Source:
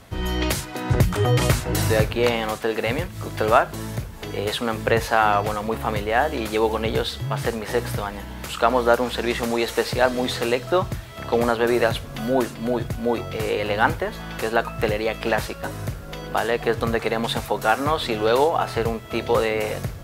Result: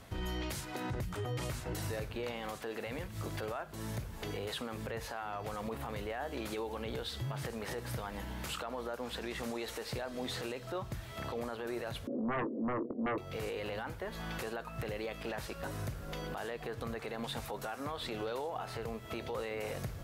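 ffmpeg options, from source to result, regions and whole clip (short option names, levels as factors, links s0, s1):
-filter_complex "[0:a]asettb=1/sr,asplit=3[s0][s1][s2];[s0]atrim=end=12.074[s3];[s1]atrim=start=12.07:end=13.18,asetpts=PTS-STARTPTS,afade=t=in:d=0.004:c=qsin,afade=t=out:st=1.106:d=0.004:c=qsin,asuperpass=centerf=350:order=8:qfactor=1.1,aeval=exprs='0.266*sin(PI/2*4.47*val(0)/0.266)':c=same,asplit=2[s4][s5];[s5]adelay=21,volume=0.2[s6];[s4][s6]amix=inputs=2:normalize=0,atrim=end_sample=48951[s7];[s2]atrim=start=13.176[s8];[s3][s7]acrossfade=d=0.004:c1=hsin:c2=qsin[s9];[s9][s8]acrossfade=d=0.004:c1=qsin:c2=hsin,acompressor=threshold=0.0398:ratio=4,alimiter=limit=0.0708:level=0:latency=1:release=13,volume=0.473"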